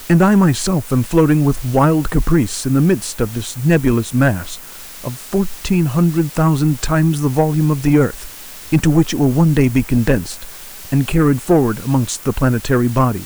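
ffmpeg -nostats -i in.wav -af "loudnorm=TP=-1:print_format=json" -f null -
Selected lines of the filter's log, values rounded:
"input_i" : "-15.9",
"input_tp" : "-3.8",
"input_lra" : "2.2",
"input_thresh" : "-26.4",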